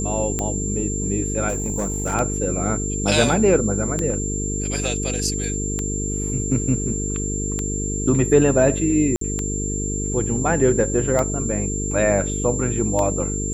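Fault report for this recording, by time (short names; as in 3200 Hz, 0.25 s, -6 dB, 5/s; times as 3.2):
buzz 50 Hz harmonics 9 -26 dBFS
tick 33 1/3 rpm -10 dBFS
tone 7300 Hz -27 dBFS
1.48–2.15 clipped -18.5 dBFS
9.16–9.21 gap 53 ms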